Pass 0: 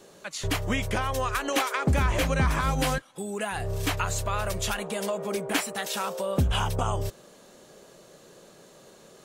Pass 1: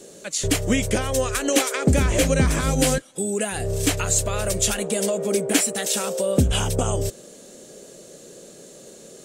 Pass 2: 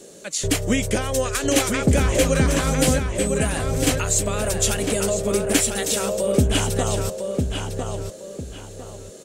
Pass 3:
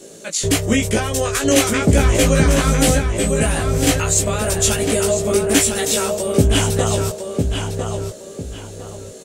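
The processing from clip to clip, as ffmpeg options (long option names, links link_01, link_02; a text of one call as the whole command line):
ffmpeg -i in.wav -af "equalizer=frequency=250:width_type=o:width=1:gain=5,equalizer=frequency=500:width_type=o:width=1:gain=6,equalizer=frequency=1000:width_type=o:width=1:gain=-9,equalizer=frequency=8000:width_type=o:width=1:gain=11,volume=3.5dB" out.wav
ffmpeg -i in.wav -filter_complex "[0:a]asplit=2[link_01][link_02];[link_02]adelay=1003,lowpass=frequency=4500:poles=1,volume=-5dB,asplit=2[link_03][link_04];[link_04]adelay=1003,lowpass=frequency=4500:poles=1,volume=0.3,asplit=2[link_05][link_06];[link_06]adelay=1003,lowpass=frequency=4500:poles=1,volume=0.3,asplit=2[link_07][link_08];[link_08]adelay=1003,lowpass=frequency=4500:poles=1,volume=0.3[link_09];[link_01][link_03][link_05][link_07][link_09]amix=inputs=5:normalize=0" out.wav
ffmpeg -i in.wav -filter_complex "[0:a]asplit=2[link_01][link_02];[link_02]adelay=18,volume=-2dB[link_03];[link_01][link_03]amix=inputs=2:normalize=0,volume=2dB" out.wav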